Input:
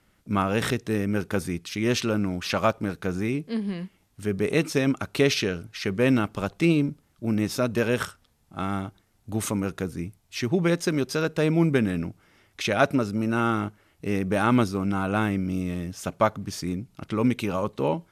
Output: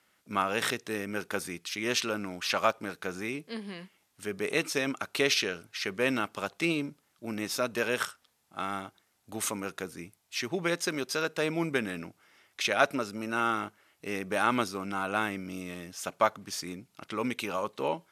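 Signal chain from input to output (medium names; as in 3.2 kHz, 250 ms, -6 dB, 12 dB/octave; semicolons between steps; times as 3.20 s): high-pass 820 Hz 6 dB/octave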